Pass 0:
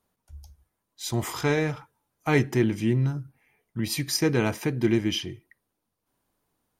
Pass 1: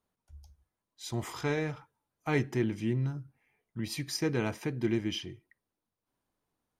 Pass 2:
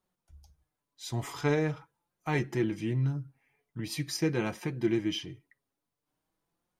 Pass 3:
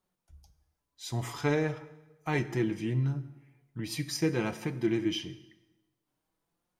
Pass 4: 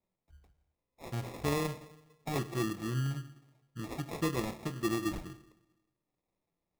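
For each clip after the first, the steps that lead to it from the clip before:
high shelf 11000 Hz -10 dB; gain -7 dB
flange 0.44 Hz, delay 5.4 ms, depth 2 ms, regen +35%; gain +4.5 dB
plate-style reverb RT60 1.1 s, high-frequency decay 0.85×, DRR 12 dB
sample-and-hold 29×; gain -4 dB

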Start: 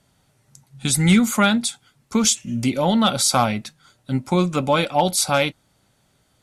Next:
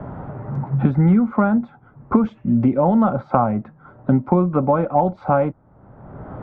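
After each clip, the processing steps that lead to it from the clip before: LPF 1200 Hz 24 dB/oct; three-band squash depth 100%; gain +2.5 dB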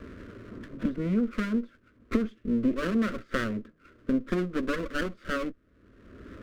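minimum comb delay 0.61 ms; fixed phaser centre 340 Hz, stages 4; gain -5.5 dB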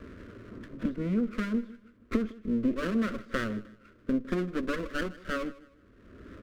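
feedback echo 0.156 s, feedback 32%, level -19 dB; gain -2 dB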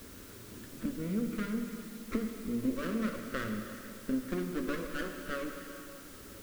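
on a send at -4 dB: reverb RT60 3.5 s, pre-delay 5 ms; on the sum: requantised 8-bit, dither triangular; gain -5.5 dB

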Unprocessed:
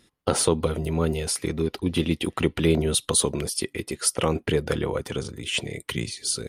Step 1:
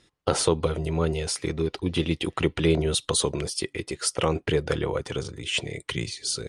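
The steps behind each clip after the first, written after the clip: LPF 8700 Hz 24 dB/oct; bell 230 Hz -8 dB 0.37 oct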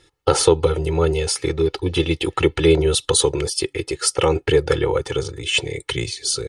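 comb 2.3 ms, depth 82%; gain +4 dB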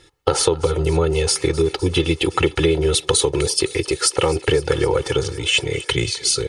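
compressor, threshold -18 dBFS, peak gain reduction 9.5 dB; thinning echo 0.256 s, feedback 78%, high-pass 400 Hz, level -18 dB; gain +4.5 dB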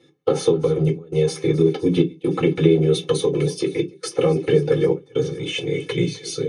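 step gate "xxxx.xxxx.xxx" 67 bpm -24 dB; reverb RT60 0.15 s, pre-delay 3 ms, DRR -2 dB; gain -16 dB

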